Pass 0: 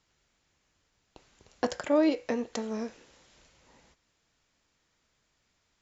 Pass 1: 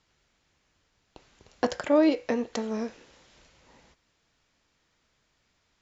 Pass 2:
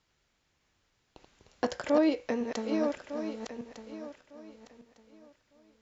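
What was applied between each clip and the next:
LPF 6500 Hz 12 dB/oct; gain +3 dB
regenerating reverse delay 0.602 s, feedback 45%, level -5.5 dB; gain -4 dB

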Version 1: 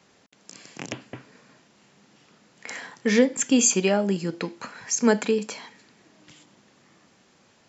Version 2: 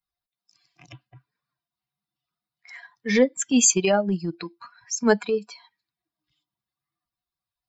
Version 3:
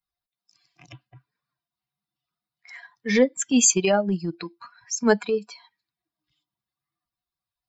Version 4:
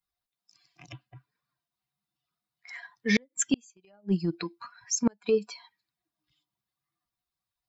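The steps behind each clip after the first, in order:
per-bin expansion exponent 2; low shelf 75 Hz -8.5 dB; transient shaper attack -8 dB, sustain -2 dB; gain +6.5 dB
nothing audible
flipped gate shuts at -12 dBFS, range -39 dB

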